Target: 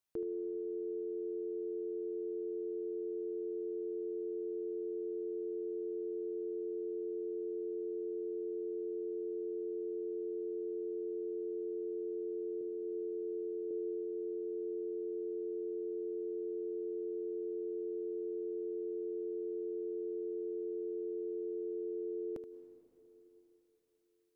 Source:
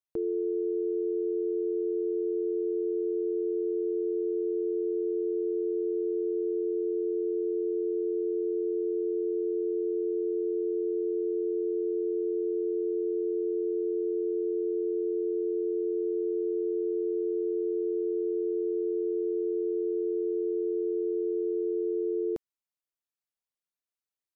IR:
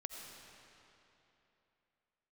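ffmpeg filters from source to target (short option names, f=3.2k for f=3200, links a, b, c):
-filter_complex "[0:a]asettb=1/sr,asplit=3[a][b][c];[a]atrim=end=12.614[d];[b]atrim=start=12.61:end=13.71,asetpts=PTS-STARTPTS,afade=t=in:d=0.004:c=qsin,afade=t=out:st=1.096:d=0.004:c=qsin,highpass=f=250:p=1[e];[c]atrim=start=13.706[f];[d][e]acrossfade=d=0.004:c1=hsin:c2=qsin[g];[g][f]acrossfade=d=0.004:c1=qsin:c2=hsin,alimiter=level_in=11dB:limit=-24dB:level=0:latency=1:release=67,volume=-11dB,asplit=2[h][i];[1:a]atrim=start_sample=2205,asetrate=35280,aresample=44100,adelay=76[j];[i][j]afir=irnorm=-1:irlink=0,volume=-9dB[k];[h][k]amix=inputs=2:normalize=0,volume=4dB"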